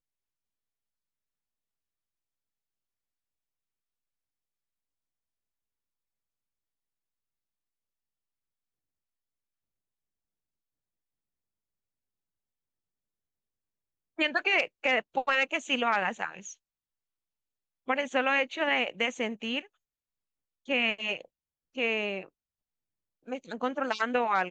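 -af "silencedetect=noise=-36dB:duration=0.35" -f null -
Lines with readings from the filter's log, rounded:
silence_start: 0.00
silence_end: 14.19 | silence_duration: 14.19
silence_start: 16.51
silence_end: 17.88 | silence_duration: 1.37
silence_start: 19.59
silence_end: 20.69 | silence_duration: 1.10
silence_start: 21.21
silence_end: 21.77 | silence_duration: 0.56
silence_start: 22.23
silence_end: 23.28 | silence_duration: 1.06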